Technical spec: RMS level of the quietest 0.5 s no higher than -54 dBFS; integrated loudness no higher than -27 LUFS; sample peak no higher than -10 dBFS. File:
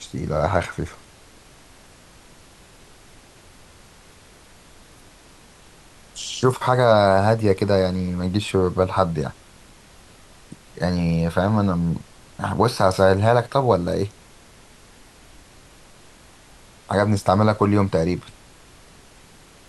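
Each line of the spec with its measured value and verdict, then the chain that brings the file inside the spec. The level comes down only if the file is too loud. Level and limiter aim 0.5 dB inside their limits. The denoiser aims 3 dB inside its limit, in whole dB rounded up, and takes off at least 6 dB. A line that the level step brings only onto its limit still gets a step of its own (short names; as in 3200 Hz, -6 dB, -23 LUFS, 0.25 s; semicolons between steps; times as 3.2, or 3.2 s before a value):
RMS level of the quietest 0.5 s -49 dBFS: fail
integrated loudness -20.5 LUFS: fail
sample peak -4.0 dBFS: fail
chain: gain -7 dB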